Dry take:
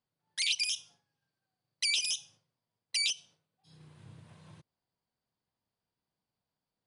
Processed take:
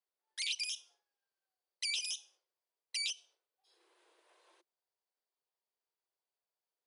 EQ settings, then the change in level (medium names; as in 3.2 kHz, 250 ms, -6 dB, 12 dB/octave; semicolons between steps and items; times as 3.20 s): steep high-pass 340 Hz 96 dB/octave; -6.5 dB